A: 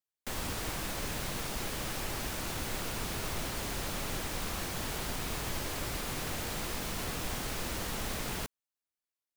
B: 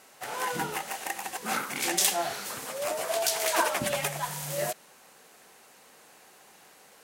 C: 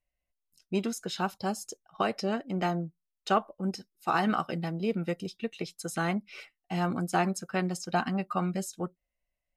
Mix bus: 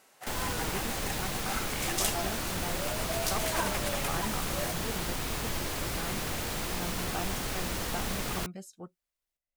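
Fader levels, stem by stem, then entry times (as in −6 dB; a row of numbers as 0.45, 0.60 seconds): +2.5, −6.5, −11.0 decibels; 0.00, 0.00, 0.00 seconds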